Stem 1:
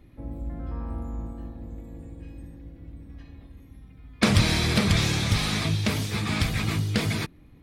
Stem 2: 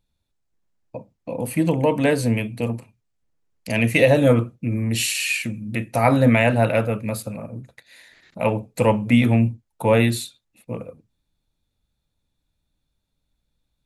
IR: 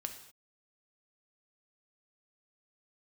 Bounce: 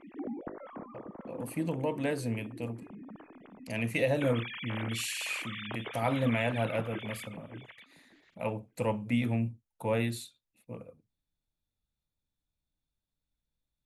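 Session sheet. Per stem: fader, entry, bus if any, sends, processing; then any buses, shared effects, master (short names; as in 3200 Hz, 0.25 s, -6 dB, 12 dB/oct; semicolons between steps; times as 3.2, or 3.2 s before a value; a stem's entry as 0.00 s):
-2.5 dB, 0.00 s, no send, echo send -16 dB, sine-wave speech; compressor 2.5:1, threshold -34 dBFS, peak gain reduction 14.5 dB; auto duck -7 dB, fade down 0.70 s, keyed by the second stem
-13.0 dB, 0.00 s, no send, no echo send, dry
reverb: off
echo: feedback echo 0.586 s, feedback 15%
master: dry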